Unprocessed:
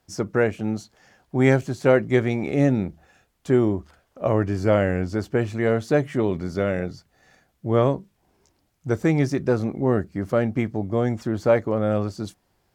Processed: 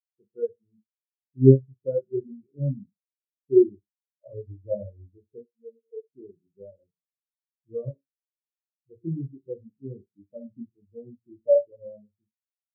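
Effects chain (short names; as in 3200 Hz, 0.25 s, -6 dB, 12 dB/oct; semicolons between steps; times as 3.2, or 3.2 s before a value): 5.4–6.07 double band-pass 330 Hz, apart 0.86 oct; reverse bouncing-ball echo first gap 30 ms, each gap 1.1×, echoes 5; spectral expander 4:1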